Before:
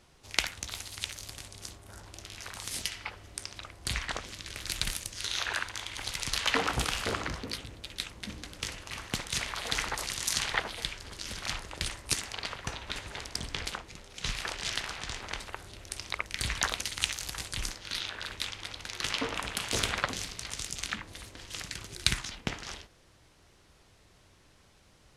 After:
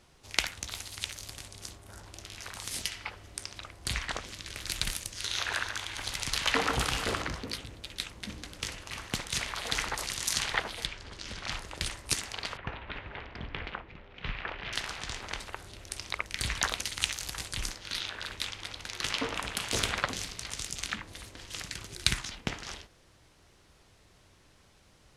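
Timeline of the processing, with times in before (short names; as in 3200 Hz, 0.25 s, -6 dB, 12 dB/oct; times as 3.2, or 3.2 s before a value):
5.14–7.22 echo with dull and thin repeats by turns 0.141 s, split 2200 Hz, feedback 62%, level -7 dB
10.86–11.52 air absorption 72 m
12.57–14.73 LPF 2800 Hz 24 dB/oct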